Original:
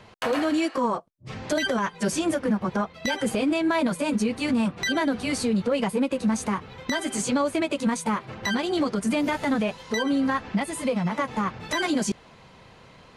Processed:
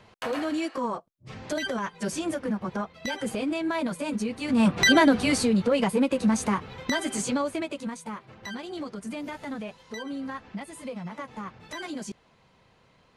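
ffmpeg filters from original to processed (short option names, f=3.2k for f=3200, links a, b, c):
-af "volume=8dB,afade=t=in:st=4.48:d=0.3:silence=0.223872,afade=t=out:st=4.78:d=0.71:silence=0.446684,afade=t=out:st=6.74:d=1.2:silence=0.251189"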